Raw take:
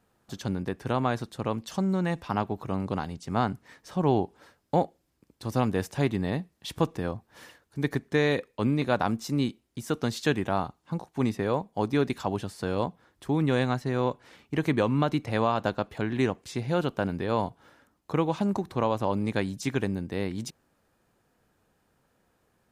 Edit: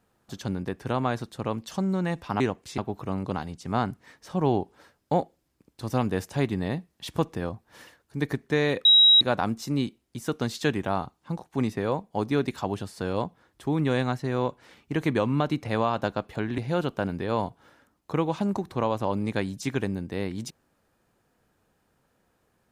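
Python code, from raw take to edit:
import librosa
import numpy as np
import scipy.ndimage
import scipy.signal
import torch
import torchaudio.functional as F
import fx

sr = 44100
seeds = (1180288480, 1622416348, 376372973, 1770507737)

y = fx.edit(x, sr, fx.bleep(start_s=8.47, length_s=0.36, hz=3840.0, db=-12.5),
    fx.move(start_s=16.2, length_s=0.38, to_s=2.4), tone=tone)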